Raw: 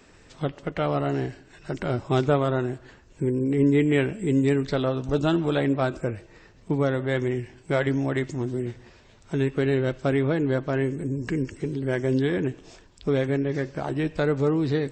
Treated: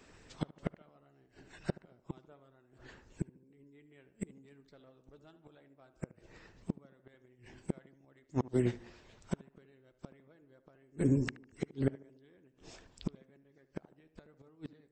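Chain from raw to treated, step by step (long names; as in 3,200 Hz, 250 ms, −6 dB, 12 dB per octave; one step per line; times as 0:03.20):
harmonic and percussive parts rebalanced percussive +6 dB
0:04.21–0:05.31: leveller curve on the samples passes 1
gate with flip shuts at −17 dBFS, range −32 dB
tape delay 74 ms, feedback 57%, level −11 dB, low-pass 1,600 Hz
expander for the loud parts 1.5 to 1, over −43 dBFS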